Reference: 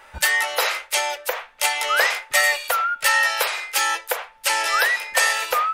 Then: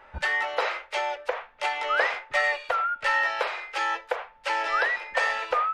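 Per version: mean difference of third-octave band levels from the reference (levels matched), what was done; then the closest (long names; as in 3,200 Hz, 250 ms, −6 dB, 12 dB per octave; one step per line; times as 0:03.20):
6.5 dB: head-to-tape spacing loss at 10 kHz 32 dB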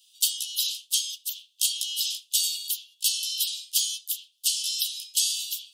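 15.5 dB: Butterworth high-pass 3,000 Hz 96 dB per octave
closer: first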